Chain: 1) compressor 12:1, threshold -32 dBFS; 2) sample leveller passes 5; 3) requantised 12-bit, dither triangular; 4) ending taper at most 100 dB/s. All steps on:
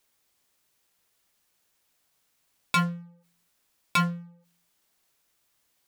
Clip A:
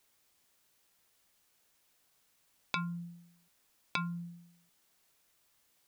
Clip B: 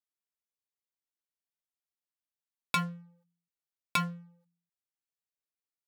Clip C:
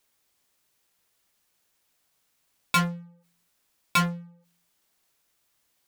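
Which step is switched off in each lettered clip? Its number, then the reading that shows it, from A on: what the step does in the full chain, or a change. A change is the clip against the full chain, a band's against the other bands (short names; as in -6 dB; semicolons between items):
2, crest factor change +10.0 dB; 3, crest factor change +5.0 dB; 1, mean gain reduction 3.0 dB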